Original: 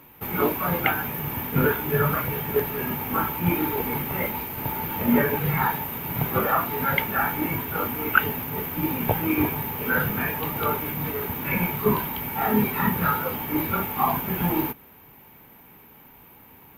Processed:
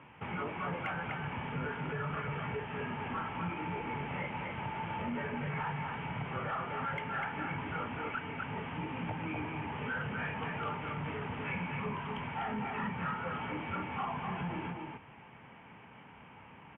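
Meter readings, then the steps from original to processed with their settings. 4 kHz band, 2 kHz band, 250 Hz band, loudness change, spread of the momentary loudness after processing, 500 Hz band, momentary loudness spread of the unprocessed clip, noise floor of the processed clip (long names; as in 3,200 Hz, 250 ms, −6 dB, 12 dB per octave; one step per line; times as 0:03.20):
−10.0 dB, −11.0 dB, −13.5 dB, −13.0 dB, 7 LU, −14.0 dB, 6 LU, −55 dBFS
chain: downward compressor 6 to 1, threshold −29 dBFS, peak gain reduction 16.5 dB
high-pass filter 85 Hz
parametric band 340 Hz −7 dB 1 octave
on a send: single-tap delay 249 ms −5 dB
on the sum: soft clipping −30.5 dBFS, distortion −13 dB
Butterworth low-pass 3,200 Hz 96 dB per octave
hard clipping −28.5 dBFS, distortion −56 dB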